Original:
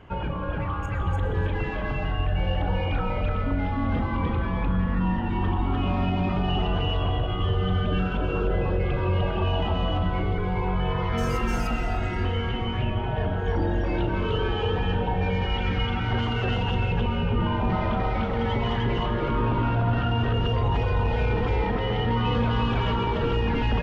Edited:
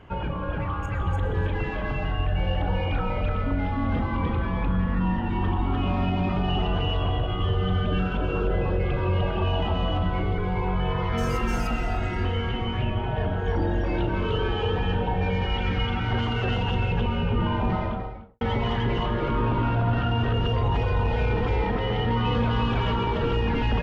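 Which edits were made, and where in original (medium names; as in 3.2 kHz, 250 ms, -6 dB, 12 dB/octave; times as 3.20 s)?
17.61–18.41 s: studio fade out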